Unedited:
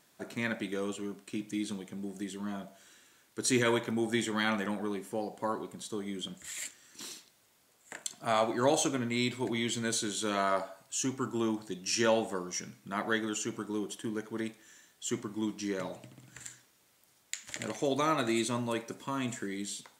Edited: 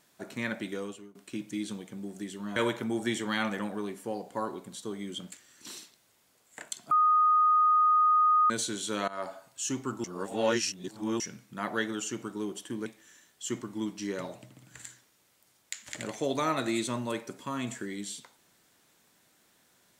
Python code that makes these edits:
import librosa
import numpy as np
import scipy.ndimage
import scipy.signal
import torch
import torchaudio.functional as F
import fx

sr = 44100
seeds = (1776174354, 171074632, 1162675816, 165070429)

y = fx.edit(x, sr, fx.fade_out_to(start_s=0.72, length_s=0.43, floor_db=-22.0),
    fx.cut(start_s=2.56, length_s=1.07),
    fx.cut(start_s=6.39, length_s=0.27),
    fx.bleep(start_s=8.25, length_s=1.59, hz=1240.0, db=-19.5),
    fx.fade_in_from(start_s=10.42, length_s=0.27, floor_db=-20.0),
    fx.reverse_span(start_s=11.38, length_s=1.16),
    fx.cut(start_s=14.2, length_s=0.27), tone=tone)